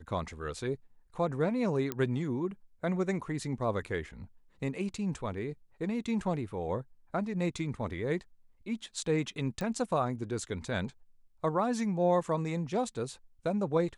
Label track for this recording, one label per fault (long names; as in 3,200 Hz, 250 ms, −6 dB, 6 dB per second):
1.920000	1.920000	click −17 dBFS
9.610000	9.610000	click −23 dBFS